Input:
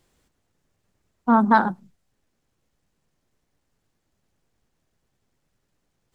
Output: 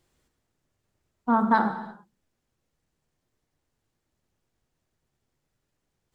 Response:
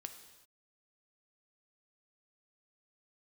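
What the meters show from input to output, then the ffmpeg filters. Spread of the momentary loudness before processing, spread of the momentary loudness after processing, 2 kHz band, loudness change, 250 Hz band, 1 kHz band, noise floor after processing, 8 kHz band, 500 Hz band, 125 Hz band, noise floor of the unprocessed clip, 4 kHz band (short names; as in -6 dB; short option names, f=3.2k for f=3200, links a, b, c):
13 LU, 17 LU, -5.0 dB, -4.0 dB, -4.5 dB, -4.0 dB, -81 dBFS, n/a, -4.5 dB, -5.0 dB, -75 dBFS, -3.5 dB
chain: -filter_complex "[1:a]atrim=start_sample=2205,afade=t=out:st=0.4:d=0.01,atrim=end_sample=18081[a];[0:a][a]afir=irnorm=-1:irlink=0"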